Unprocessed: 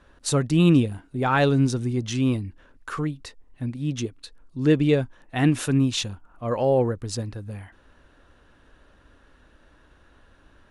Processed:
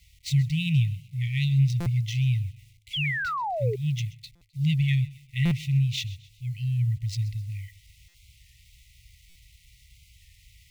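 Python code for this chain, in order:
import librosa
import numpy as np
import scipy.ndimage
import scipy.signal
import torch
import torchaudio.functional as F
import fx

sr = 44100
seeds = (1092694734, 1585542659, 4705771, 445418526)

p1 = scipy.ndimage.median_filter(x, 5, mode='constant')
p2 = scipy.signal.sosfilt(scipy.signal.butter(2, 41.0, 'highpass', fs=sr, output='sos'), p1)
p3 = fx.high_shelf(p2, sr, hz=5000.0, db=-8.5)
p4 = fx.quant_dither(p3, sr, seeds[0], bits=10, dither='none')
p5 = p4 + fx.echo_feedback(p4, sr, ms=130, feedback_pct=40, wet_db=-19, dry=0)
p6 = fx.dynamic_eq(p5, sr, hz=170.0, q=0.81, threshold_db=-30.0, ratio=4.0, max_db=5)
p7 = fx.rider(p6, sr, range_db=4, speed_s=2.0)
p8 = fx.brickwall_bandstop(p7, sr, low_hz=150.0, high_hz=1900.0)
p9 = fx.spec_paint(p8, sr, seeds[1], shape='fall', start_s=2.94, length_s=0.82, low_hz=390.0, high_hz=3400.0, level_db=-30.0)
p10 = fx.buffer_glitch(p9, sr, at_s=(1.8, 4.35, 5.45, 8.08, 9.29), block=256, repeats=10)
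p11 = fx.record_warp(p10, sr, rpm=33.33, depth_cents=100.0)
y = p11 * librosa.db_to_amplitude(1.0)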